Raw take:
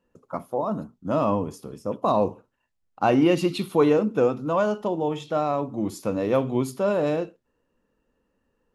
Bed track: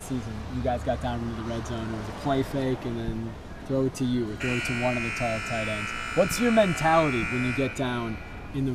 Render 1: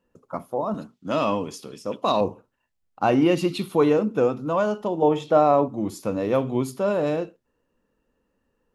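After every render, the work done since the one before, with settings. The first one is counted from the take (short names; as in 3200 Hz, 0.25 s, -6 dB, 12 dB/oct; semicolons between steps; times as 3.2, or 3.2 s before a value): 0.74–2.21 weighting filter D; 5.02–5.68 bell 550 Hz +8 dB 2.9 oct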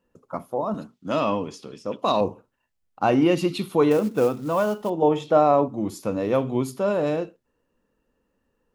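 1.2–1.99 air absorption 64 m; 3.91–4.9 companded quantiser 6-bit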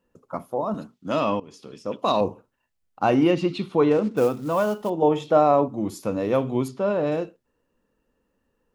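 1.4–1.92 fade in equal-power, from -19.5 dB; 3.31–4.17 air absorption 110 m; 6.68–7.12 air absorption 120 m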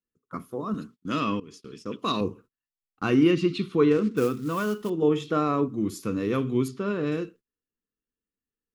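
gate -46 dBFS, range -22 dB; band shelf 710 Hz -15.5 dB 1 oct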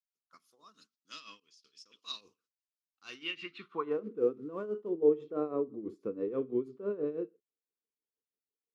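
tremolo 6.1 Hz, depth 75%; band-pass sweep 5100 Hz -> 450 Hz, 3.06–4.15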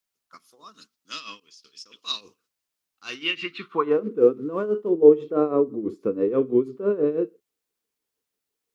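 gain +12 dB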